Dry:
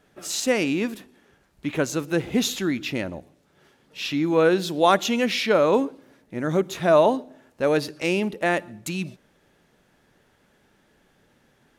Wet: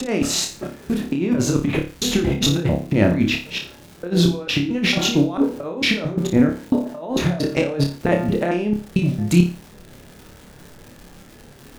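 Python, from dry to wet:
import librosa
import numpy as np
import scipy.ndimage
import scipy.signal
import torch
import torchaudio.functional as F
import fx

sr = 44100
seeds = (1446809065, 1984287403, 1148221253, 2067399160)

p1 = fx.block_reorder(x, sr, ms=224.0, group=3)
p2 = fx.tilt_eq(p1, sr, slope=-2.5)
p3 = fx.dmg_crackle(p2, sr, seeds[0], per_s=310.0, level_db=-45.0)
p4 = fx.over_compress(p3, sr, threshold_db=-24.0, ratio=-0.5)
p5 = p4 + fx.room_flutter(p4, sr, wall_m=4.9, rt60_s=0.35, dry=0)
y = F.gain(torch.from_numpy(p5), 5.0).numpy()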